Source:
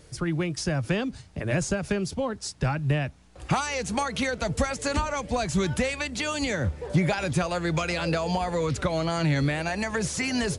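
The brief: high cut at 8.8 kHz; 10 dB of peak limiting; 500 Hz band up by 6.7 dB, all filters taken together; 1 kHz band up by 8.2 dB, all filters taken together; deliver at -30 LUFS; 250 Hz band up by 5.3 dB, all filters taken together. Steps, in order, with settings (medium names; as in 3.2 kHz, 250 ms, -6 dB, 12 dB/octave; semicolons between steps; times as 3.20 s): low-pass 8.8 kHz; peaking EQ 250 Hz +6 dB; peaking EQ 500 Hz +4 dB; peaking EQ 1 kHz +9 dB; trim -5 dB; peak limiter -20.5 dBFS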